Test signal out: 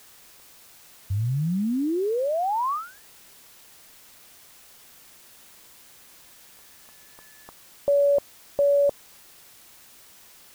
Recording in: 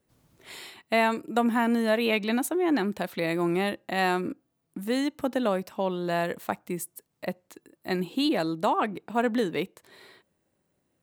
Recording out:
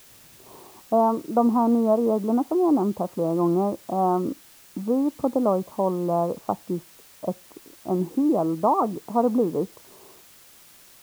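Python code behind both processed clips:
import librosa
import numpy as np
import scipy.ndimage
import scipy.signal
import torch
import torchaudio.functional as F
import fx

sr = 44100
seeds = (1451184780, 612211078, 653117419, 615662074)

p1 = scipy.signal.sosfilt(scipy.signal.butter(12, 1200.0, 'lowpass', fs=sr, output='sos'), x)
p2 = fx.quant_dither(p1, sr, seeds[0], bits=8, dither='triangular')
y = p1 + (p2 * 10.0 ** (-3.0 / 20.0))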